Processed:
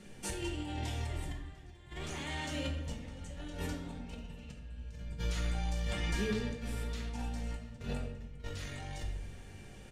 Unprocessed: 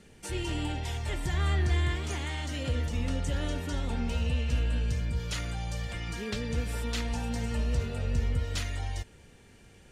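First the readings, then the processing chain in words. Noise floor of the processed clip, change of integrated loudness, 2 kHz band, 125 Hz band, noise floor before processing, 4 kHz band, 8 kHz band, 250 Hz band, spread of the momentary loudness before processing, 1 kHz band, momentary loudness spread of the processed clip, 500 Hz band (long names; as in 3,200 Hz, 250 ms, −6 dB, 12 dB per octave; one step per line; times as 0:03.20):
−51 dBFS, −7.5 dB, −6.0 dB, −9.5 dB, −56 dBFS, −6.0 dB, −5.0 dB, −5.0 dB, 6 LU, −6.0 dB, 13 LU, −5.0 dB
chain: compressor whose output falls as the input rises −35 dBFS, ratio −0.5
on a send: single-tap delay 698 ms −23 dB
on the sum: rectangular room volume 310 cubic metres, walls mixed, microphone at 1 metre
level −5.5 dB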